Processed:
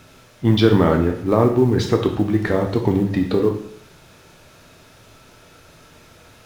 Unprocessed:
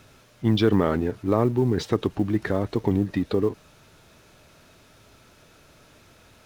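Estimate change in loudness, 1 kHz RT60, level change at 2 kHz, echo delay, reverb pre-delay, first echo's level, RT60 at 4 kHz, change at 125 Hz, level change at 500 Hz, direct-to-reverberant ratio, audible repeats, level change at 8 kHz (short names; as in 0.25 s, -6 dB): +5.5 dB, 0.60 s, +6.0 dB, none, 6 ms, none, 0.60 s, +6.0 dB, +6.0 dB, 3.0 dB, none, n/a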